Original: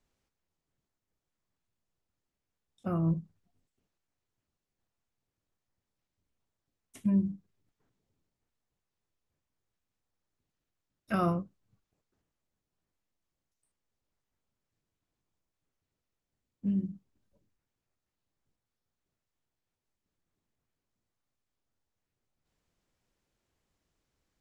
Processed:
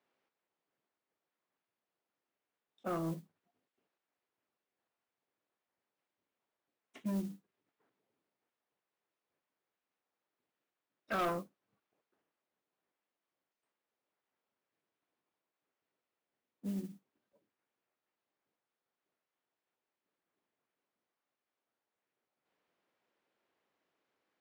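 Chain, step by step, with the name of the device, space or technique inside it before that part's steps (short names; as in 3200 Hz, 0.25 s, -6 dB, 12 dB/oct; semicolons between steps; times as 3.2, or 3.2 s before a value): carbon microphone (BPF 360–2900 Hz; soft clip -32 dBFS, distortion -10 dB; modulation noise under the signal 22 dB); gain +3 dB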